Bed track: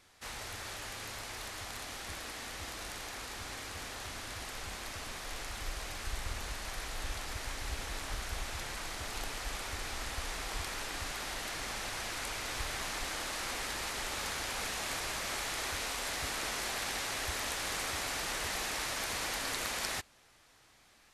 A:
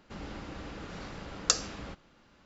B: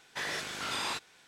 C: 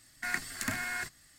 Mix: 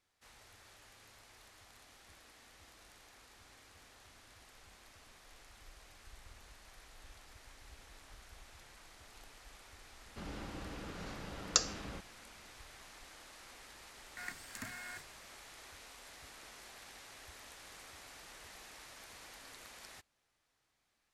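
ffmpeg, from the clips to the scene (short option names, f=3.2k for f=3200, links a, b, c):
-filter_complex "[0:a]volume=-17.5dB[a];[1:a]atrim=end=2.45,asetpts=PTS-STARTPTS,volume=-3.5dB,afade=t=in:d=0.004:c=hsin,afade=t=out:st=2.446:d=0.004:c=hsin,adelay=10060[b];[3:a]atrim=end=1.38,asetpts=PTS-STARTPTS,volume=-12dB,afade=t=in:d=0.004:c=hsin,afade=t=out:st=1.376:d=0.004:c=hsin,adelay=13940[c];[a][b][c]amix=inputs=3:normalize=0"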